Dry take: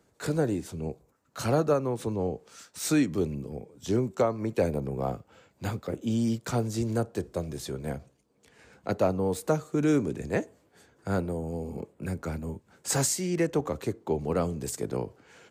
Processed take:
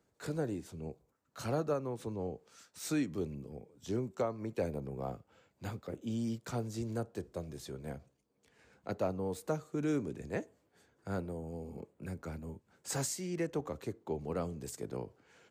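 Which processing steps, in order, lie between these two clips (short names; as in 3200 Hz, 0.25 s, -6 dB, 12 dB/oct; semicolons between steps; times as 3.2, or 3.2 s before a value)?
bell 9800 Hz -2 dB; gain -9 dB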